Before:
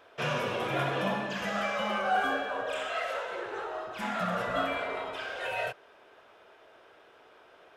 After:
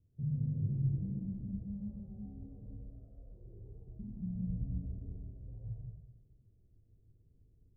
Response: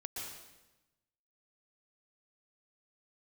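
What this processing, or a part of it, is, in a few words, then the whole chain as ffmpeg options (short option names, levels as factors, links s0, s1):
club heard from the street: -filter_complex "[0:a]alimiter=level_in=1.06:limit=0.0631:level=0:latency=1:release=25,volume=0.944,lowpass=f=140:w=0.5412,lowpass=f=140:w=1.3066[s0];[1:a]atrim=start_sample=2205[s1];[s0][s1]afir=irnorm=-1:irlink=0,asubboost=boost=2.5:cutoff=58,volume=5.96"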